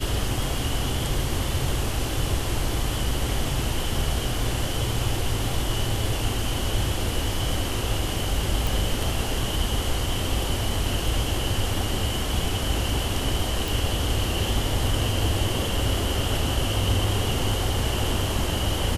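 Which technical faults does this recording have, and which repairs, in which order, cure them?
8.67 pop
13.68 pop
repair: de-click

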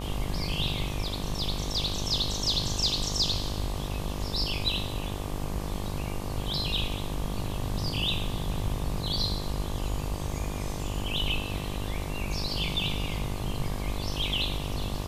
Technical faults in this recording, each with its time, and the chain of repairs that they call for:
buzz 50 Hz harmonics 24 -35 dBFS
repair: de-hum 50 Hz, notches 24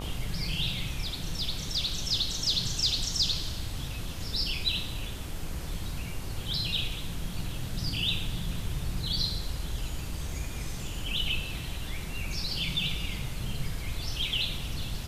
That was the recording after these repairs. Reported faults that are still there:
none

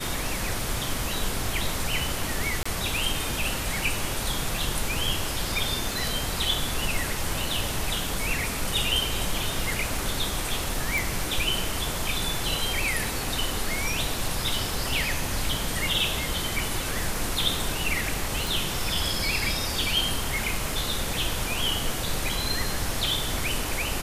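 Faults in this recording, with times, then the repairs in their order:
2.63–2.65 gap 25 ms
10.98 pop
18.47 pop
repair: de-click; interpolate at 2.63, 25 ms

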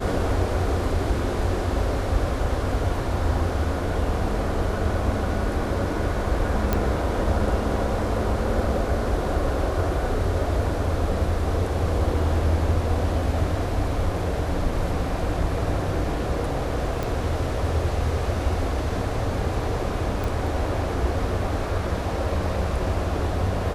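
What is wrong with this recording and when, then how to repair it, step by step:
6.73 pop -8 dBFS
17.03 pop
20.24 pop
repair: de-click

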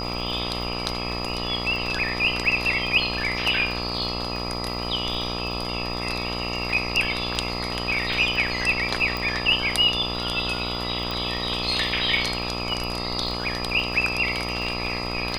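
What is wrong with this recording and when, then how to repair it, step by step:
buzz 60 Hz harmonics 22 -31 dBFS
crackle 37/s -32 dBFS
tone 4900 Hz -32 dBFS
9.17 pop
11.11 pop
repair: de-click; notch 4900 Hz, Q 30; de-hum 60 Hz, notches 22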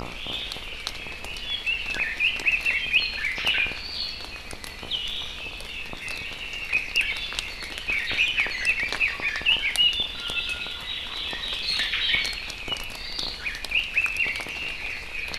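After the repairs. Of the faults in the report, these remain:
9.17 pop

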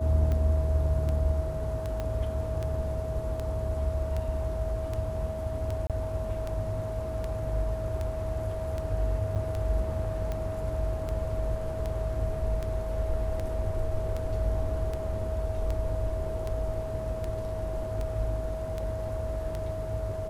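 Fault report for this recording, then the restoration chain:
tick 78 rpm -21 dBFS
tone 640 Hz -34 dBFS
2 pop -20 dBFS
5.87–5.9 gap 27 ms
9.35–9.36 gap 7.9 ms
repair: de-click; notch 640 Hz, Q 30; interpolate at 5.87, 27 ms; interpolate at 9.35, 7.9 ms

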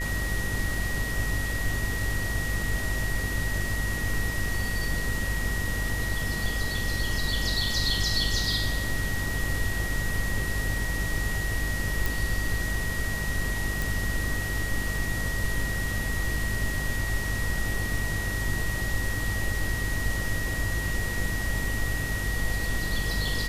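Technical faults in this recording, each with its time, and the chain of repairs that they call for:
buzz 50 Hz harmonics 13 -32 dBFS
tone 1900 Hz -32 dBFS
12.06 pop
13.82 pop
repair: de-click; de-hum 50 Hz, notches 13; notch 1900 Hz, Q 30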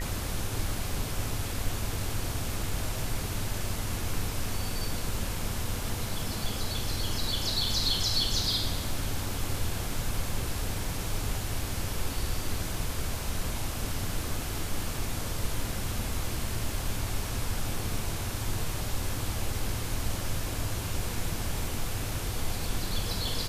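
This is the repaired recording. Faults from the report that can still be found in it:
none

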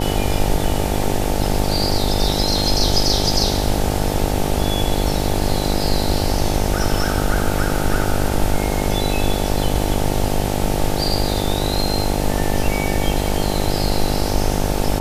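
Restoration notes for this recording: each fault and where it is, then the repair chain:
buzz 50 Hz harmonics 18 -22 dBFS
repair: de-hum 50 Hz, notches 18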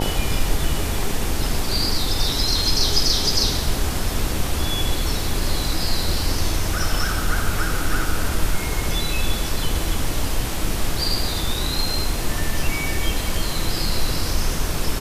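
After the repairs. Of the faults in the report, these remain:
none

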